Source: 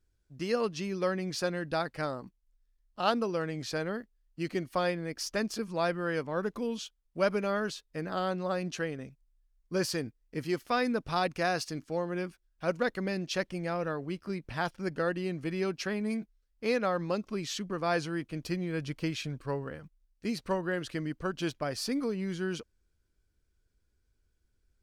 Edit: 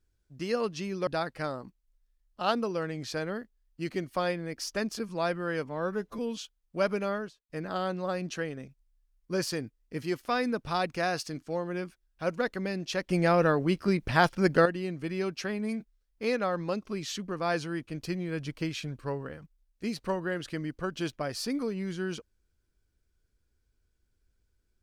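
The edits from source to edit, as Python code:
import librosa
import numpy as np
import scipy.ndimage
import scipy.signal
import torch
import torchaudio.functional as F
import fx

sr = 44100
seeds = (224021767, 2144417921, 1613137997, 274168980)

y = fx.studio_fade_out(x, sr, start_s=7.46, length_s=0.45)
y = fx.edit(y, sr, fx.cut(start_s=1.07, length_s=0.59),
    fx.stretch_span(start_s=6.25, length_s=0.35, factor=1.5),
    fx.clip_gain(start_s=13.51, length_s=1.56, db=9.5), tone=tone)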